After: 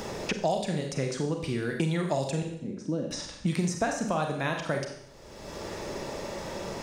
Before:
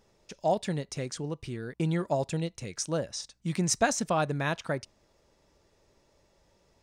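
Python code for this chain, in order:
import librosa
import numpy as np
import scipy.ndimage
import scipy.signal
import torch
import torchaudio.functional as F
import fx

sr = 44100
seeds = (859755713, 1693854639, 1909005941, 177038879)

y = fx.bandpass_q(x, sr, hz=250.0, q=2.9, at=(2.42, 3.11))
y = fx.rev_schroeder(y, sr, rt60_s=0.53, comb_ms=30, drr_db=3.0)
y = fx.band_squash(y, sr, depth_pct=100)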